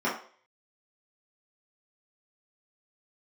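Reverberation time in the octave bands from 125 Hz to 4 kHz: 0.30, 0.35, 0.50, 0.45, 0.45, 0.45 s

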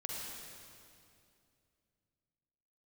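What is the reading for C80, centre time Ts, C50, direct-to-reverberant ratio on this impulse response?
-0.5 dB, 0.145 s, -2.0 dB, -3.0 dB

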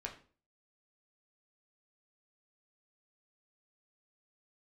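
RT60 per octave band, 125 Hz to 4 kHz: 0.50, 0.45, 0.45, 0.40, 0.35, 0.35 s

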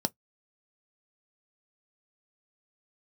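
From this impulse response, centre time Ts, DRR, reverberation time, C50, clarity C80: 2 ms, 9.5 dB, not exponential, 37.0 dB, 58.0 dB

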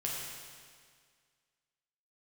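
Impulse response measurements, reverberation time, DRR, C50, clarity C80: 1.9 s, -4.0 dB, -0.5 dB, 1.0 dB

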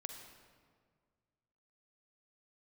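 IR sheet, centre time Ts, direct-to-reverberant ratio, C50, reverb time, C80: 40 ms, 4.5 dB, 5.5 dB, 1.8 s, 6.5 dB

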